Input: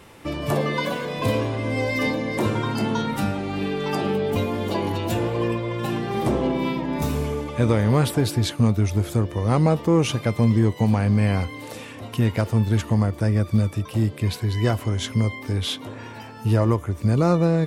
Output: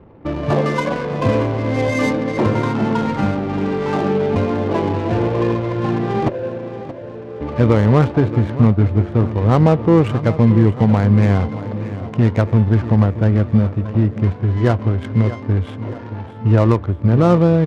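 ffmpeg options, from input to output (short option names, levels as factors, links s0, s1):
-filter_complex "[0:a]lowpass=5000,acrossover=split=3000[s0][s1];[s1]acompressor=threshold=0.00355:ratio=4:attack=1:release=60[s2];[s0][s2]amix=inputs=2:normalize=0,asplit=3[s3][s4][s5];[s3]afade=t=out:st=6.28:d=0.02[s6];[s4]asplit=3[s7][s8][s9];[s7]bandpass=f=530:t=q:w=8,volume=1[s10];[s8]bandpass=f=1840:t=q:w=8,volume=0.501[s11];[s9]bandpass=f=2480:t=q:w=8,volume=0.355[s12];[s10][s11][s12]amix=inputs=3:normalize=0,afade=t=in:st=6.28:d=0.02,afade=t=out:st=7.4:d=0.02[s13];[s5]afade=t=in:st=7.4:d=0.02[s14];[s6][s13][s14]amix=inputs=3:normalize=0,adynamicsmooth=sensitivity=3:basefreq=510,asplit=2[s15][s16];[s16]aecho=0:1:627|1254|1881|2508|3135|3762:0.2|0.112|0.0626|0.035|0.0196|0.011[s17];[s15][s17]amix=inputs=2:normalize=0,volume=2"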